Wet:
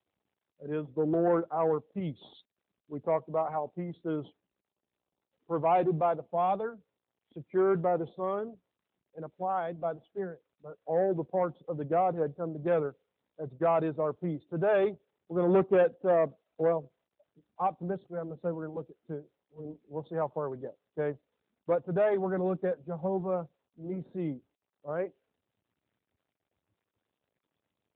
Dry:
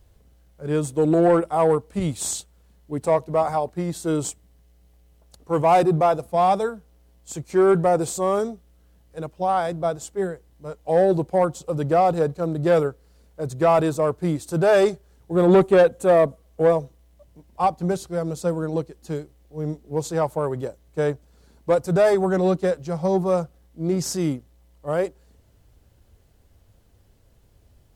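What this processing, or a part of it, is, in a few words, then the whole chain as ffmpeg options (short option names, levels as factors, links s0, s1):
mobile call with aggressive noise cancelling: -af "highpass=140,afftdn=nr=26:nf=-42,volume=0.376" -ar 8000 -c:a libopencore_amrnb -b:a 12200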